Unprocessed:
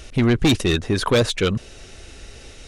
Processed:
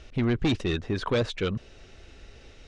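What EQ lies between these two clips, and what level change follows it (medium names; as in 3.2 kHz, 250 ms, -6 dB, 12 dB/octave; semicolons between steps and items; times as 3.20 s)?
distance through air 120 m; -7.5 dB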